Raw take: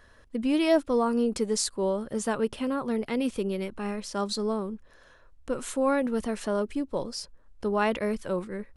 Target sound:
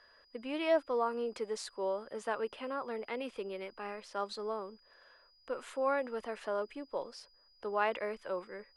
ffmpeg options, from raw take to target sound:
-filter_complex "[0:a]aeval=exprs='val(0)+0.00282*sin(2*PI*4900*n/s)':c=same,acrossover=split=410 3400:gain=0.112 1 0.178[a][b][c];[a][b][c]amix=inputs=3:normalize=0,volume=-4dB"

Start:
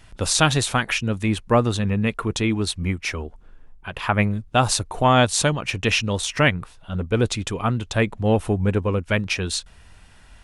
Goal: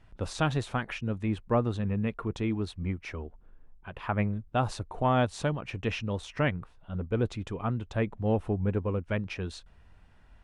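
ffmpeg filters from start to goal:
-af "lowpass=f=1.2k:p=1,volume=-7.5dB"

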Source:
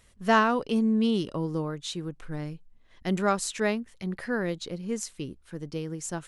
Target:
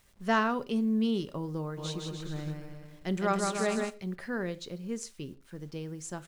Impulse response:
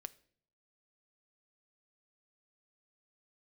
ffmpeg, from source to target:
-filter_complex "[0:a]lowpass=10k,acrusher=bits=9:mix=0:aa=0.000001,asplit=3[a][b][c];[a]afade=t=out:st=1.77:d=0.02[d];[b]aecho=1:1:160|296|411.6|509.9|593.4:0.631|0.398|0.251|0.158|0.1,afade=t=in:st=1.77:d=0.02,afade=t=out:st=3.89:d=0.02[e];[c]afade=t=in:st=3.89:d=0.02[f];[d][e][f]amix=inputs=3:normalize=0[g];[1:a]atrim=start_sample=2205,afade=t=out:st=0.2:d=0.01,atrim=end_sample=9261[h];[g][h]afir=irnorm=-1:irlink=0"

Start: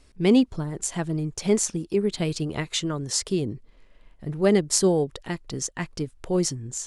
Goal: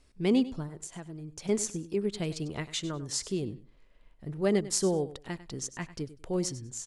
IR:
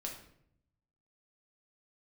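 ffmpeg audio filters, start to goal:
-filter_complex "[0:a]asettb=1/sr,asplit=3[a][b][c];[a]atrim=end=0.664[d];[b]atrim=start=0.66:end=1.49,asetpts=PTS-STARTPTS,afade=t=in:d=0.004:c=qsin,afade=t=out:st=0.826:d=0.004:c=qsin,acompressor=threshold=-32dB:ratio=6[e];[c]atrim=start=1.486[f];[d][e]acrossfade=d=0.004:c1=hsin:c2=qsin[g];[g][f]acrossfade=d=0.004:c1=qsin:c2=hsin,asplit=2[h][i];[i]aecho=0:1:98|196:0.168|0.0336[j];[h][j]amix=inputs=2:normalize=0,volume=-7dB"

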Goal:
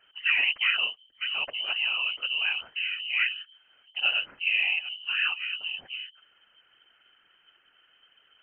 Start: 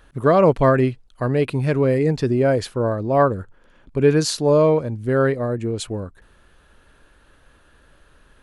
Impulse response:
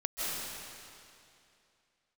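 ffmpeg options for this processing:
-af "highshelf=f=2.2k:g=10,lowpass=f=2.6k:t=q:w=0.5098,lowpass=f=2.6k:t=q:w=0.6013,lowpass=f=2.6k:t=q:w=0.9,lowpass=f=2.6k:t=q:w=2.563,afreqshift=-3100,afftfilt=real='hypot(re,im)*cos(2*PI*random(0))':imag='hypot(re,im)*sin(2*PI*random(1))':win_size=512:overlap=0.75,volume=-5dB"

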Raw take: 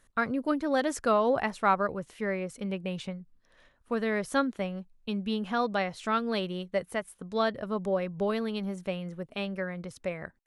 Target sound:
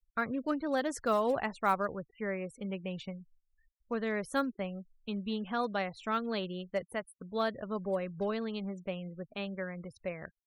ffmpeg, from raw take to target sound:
-af "acrusher=bits=5:mode=log:mix=0:aa=0.000001,afftfilt=real='re*gte(hypot(re,im),0.00631)':imag='im*gte(hypot(re,im),0.00631)':win_size=1024:overlap=0.75,volume=-4.5dB"

